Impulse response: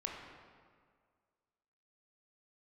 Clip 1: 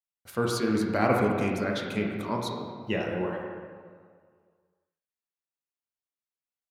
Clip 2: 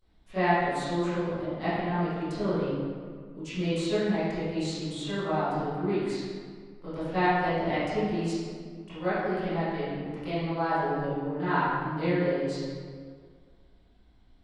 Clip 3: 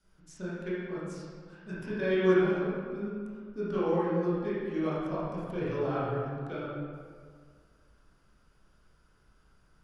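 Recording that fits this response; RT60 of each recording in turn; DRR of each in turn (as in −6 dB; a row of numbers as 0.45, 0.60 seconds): 1; 1.9, 1.9, 1.9 seconds; −1.0, −18.5, −10.5 decibels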